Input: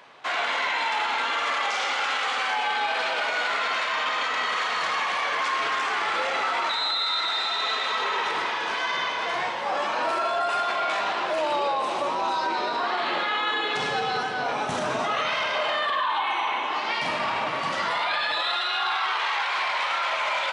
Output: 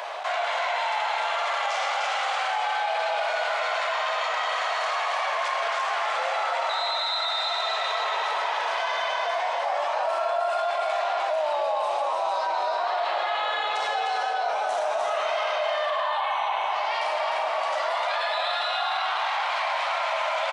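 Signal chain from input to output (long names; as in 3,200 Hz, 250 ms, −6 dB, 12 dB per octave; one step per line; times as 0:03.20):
four-pole ladder high-pass 590 Hz, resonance 65%
high-shelf EQ 6,300 Hz +5 dB
single-tap delay 303 ms −4 dB
envelope flattener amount 70%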